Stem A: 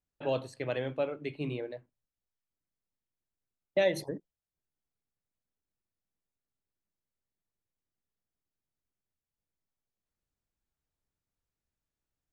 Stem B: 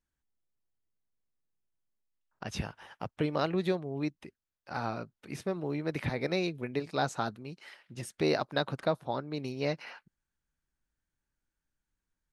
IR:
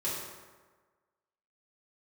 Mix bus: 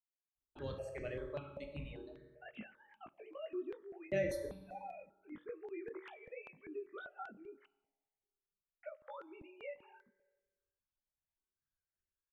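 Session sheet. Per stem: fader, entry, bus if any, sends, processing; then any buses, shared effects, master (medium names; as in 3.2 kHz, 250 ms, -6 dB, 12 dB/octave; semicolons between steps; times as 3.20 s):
-10.5 dB, 0.35 s, send -4.5 dB, octave divider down 2 oct, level -4 dB; reverb removal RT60 1.9 s
-4.5 dB, 0.00 s, muted 7.66–8.83 s, send -22.5 dB, formants replaced by sine waves; compression 3:1, threshold -34 dBFS, peak gain reduction 9.5 dB; chorus 0.33 Hz, delay 18 ms, depth 3.7 ms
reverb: on, RT60 1.4 s, pre-delay 3 ms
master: stepped phaser 5.1 Hz 390–3600 Hz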